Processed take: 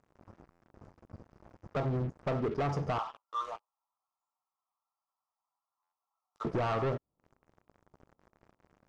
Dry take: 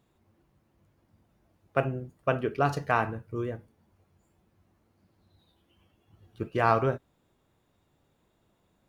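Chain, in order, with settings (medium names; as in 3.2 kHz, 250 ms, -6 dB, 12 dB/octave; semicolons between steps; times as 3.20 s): median filter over 3 samples; 2.98–6.45 s: steep high-pass 850 Hz 36 dB/octave; compression 4:1, threshold -42 dBFS, peak gain reduction 20 dB; brick-wall FIR band-stop 1.4–4.7 kHz; waveshaping leveller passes 5; distance through air 130 m; buffer glitch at 0.50/5.82 s, samples 512, times 8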